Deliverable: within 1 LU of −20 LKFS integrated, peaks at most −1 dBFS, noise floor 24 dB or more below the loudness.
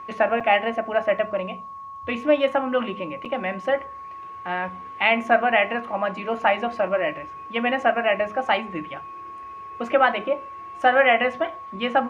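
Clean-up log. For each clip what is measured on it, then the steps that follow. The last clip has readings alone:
number of dropouts 2; longest dropout 5.9 ms; interfering tone 1,100 Hz; level of the tone −35 dBFS; integrated loudness −23.0 LKFS; sample peak −4.5 dBFS; target loudness −20.0 LKFS
→ repair the gap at 0:00.40/0:03.25, 5.9 ms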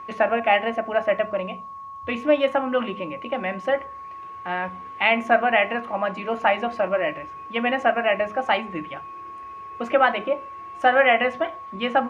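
number of dropouts 0; interfering tone 1,100 Hz; level of the tone −35 dBFS
→ notch filter 1,100 Hz, Q 30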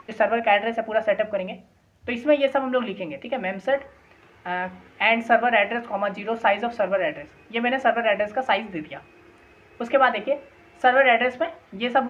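interfering tone none found; integrated loudness −23.0 LKFS; sample peak −4.5 dBFS; target loudness −20.0 LKFS
→ level +3 dB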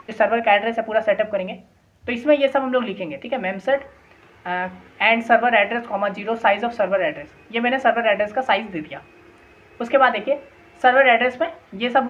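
integrated loudness −20.0 LKFS; sample peak −1.5 dBFS; background noise floor −52 dBFS

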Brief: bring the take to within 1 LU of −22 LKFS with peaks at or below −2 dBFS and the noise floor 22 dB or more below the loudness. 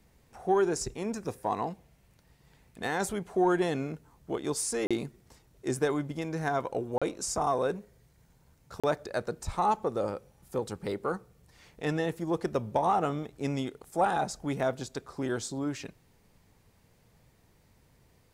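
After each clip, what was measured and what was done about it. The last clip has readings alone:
number of dropouts 3; longest dropout 36 ms; integrated loudness −31.5 LKFS; sample peak −15.0 dBFS; target loudness −22.0 LKFS
→ repair the gap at 0:04.87/0:06.98/0:08.80, 36 ms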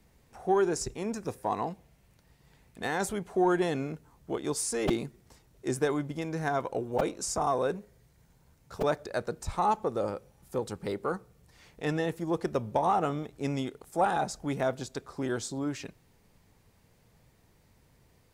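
number of dropouts 0; integrated loudness −31.5 LKFS; sample peak −13.0 dBFS; target loudness −22.0 LKFS
→ level +9.5 dB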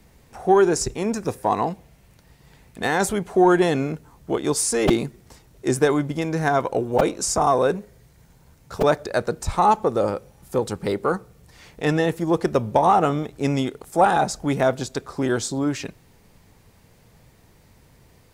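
integrated loudness −22.0 LKFS; sample peak −3.5 dBFS; background noise floor −55 dBFS

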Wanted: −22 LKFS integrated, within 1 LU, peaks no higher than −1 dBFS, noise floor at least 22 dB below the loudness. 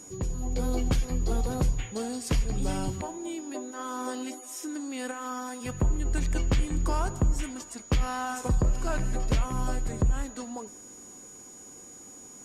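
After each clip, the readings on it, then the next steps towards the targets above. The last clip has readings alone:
interfering tone 6,800 Hz; level of the tone −46 dBFS; integrated loudness −31.0 LKFS; sample peak −16.5 dBFS; target loudness −22.0 LKFS
→ notch filter 6,800 Hz, Q 30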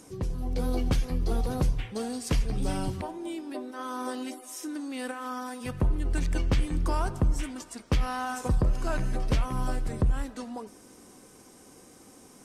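interfering tone none found; integrated loudness −31.0 LKFS; sample peak −17.0 dBFS; target loudness −22.0 LKFS
→ level +9 dB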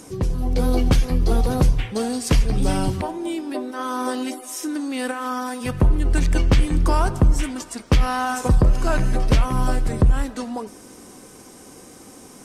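integrated loudness −22.0 LKFS; sample peak −8.0 dBFS; background noise floor −44 dBFS

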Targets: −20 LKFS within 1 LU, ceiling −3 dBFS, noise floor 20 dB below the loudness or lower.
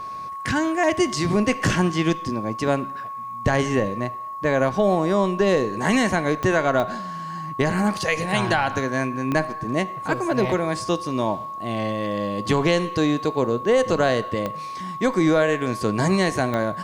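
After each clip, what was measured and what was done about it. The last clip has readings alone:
number of clicks 5; interfering tone 1,100 Hz; level of the tone −30 dBFS; integrated loudness −22.5 LKFS; sample peak −9.0 dBFS; target loudness −20.0 LKFS
→ click removal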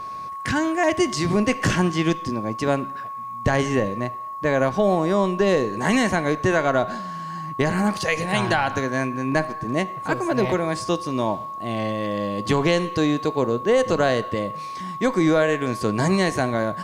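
number of clicks 0; interfering tone 1,100 Hz; level of the tone −30 dBFS
→ notch filter 1,100 Hz, Q 30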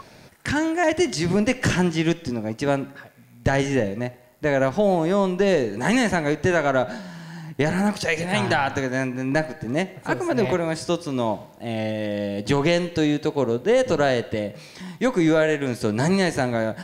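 interfering tone none found; integrated loudness −23.0 LKFS; sample peak −9.5 dBFS; target loudness −20.0 LKFS
→ level +3 dB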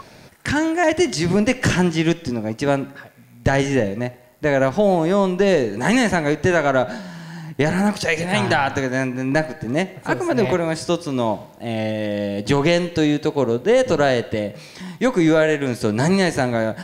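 integrated loudness −20.0 LKFS; sample peak −6.5 dBFS; background noise floor −46 dBFS

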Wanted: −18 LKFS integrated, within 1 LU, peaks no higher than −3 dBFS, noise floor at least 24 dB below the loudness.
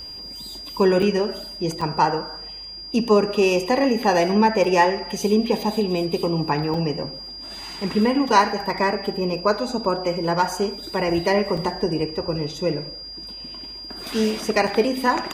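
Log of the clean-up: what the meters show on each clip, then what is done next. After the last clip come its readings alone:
number of dropouts 6; longest dropout 4.5 ms; interfering tone 4,800 Hz; level of the tone −34 dBFS; integrated loudness −21.5 LKFS; sample peak −4.0 dBFS; target loudness −18.0 LKFS
→ repair the gap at 0:01.02/0:01.81/0:04.64/0:06.74/0:11.57/0:14.67, 4.5 ms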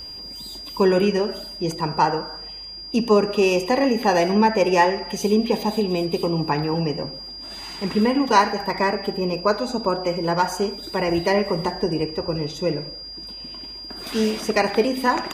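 number of dropouts 0; interfering tone 4,800 Hz; level of the tone −34 dBFS
→ notch filter 4,800 Hz, Q 30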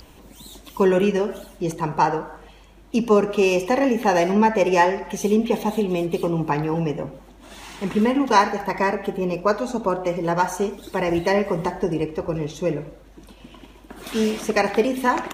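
interfering tone none found; integrated loudness −22.0 LKFS; sample peak −4.0 dBFS; target loudness −18.0 LKFS
→ level +4 dB
brickwall limiter −3 dBFS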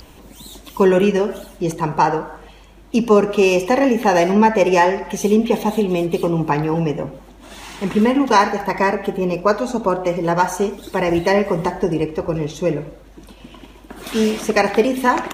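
integrated loudness −18.0 LKFS; sample peak −3.0 dBFS; background noise floor −44 dBFS

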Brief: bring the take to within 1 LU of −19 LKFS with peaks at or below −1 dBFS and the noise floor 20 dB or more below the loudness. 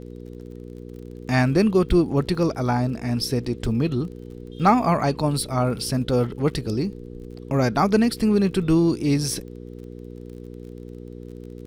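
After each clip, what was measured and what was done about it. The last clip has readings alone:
crackle rate 34 per second; mains hum 60 Hz; hum harmonics up to 480 Hz; level of the hum −37 dBFS; integrated loudness −22.0 LKFS; sample peak −6.0 dBFS; target loudness −19.0 LKFS
→ click removal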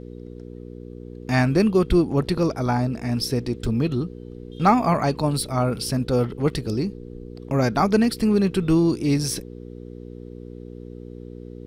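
crackle rate 0.086 per second; mains hum 60 Hz; hum harmonics up to 480 Hz; level of the hum −37 dBFS
→ hum removal 60 Hz, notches 8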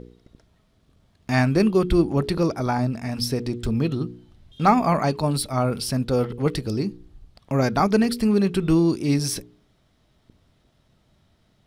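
mains hum none found; integrated loudness −22.5 LKFS; sample peak −5.5 dBFS; target loudness −19.0 LKFS
→ level +3.5 dB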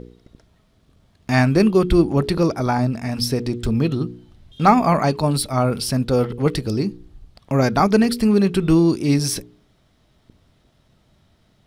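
integrated loudness −19.0 LKFS; sample peak −2.0 dBFS; background noise floor −60 dBFS

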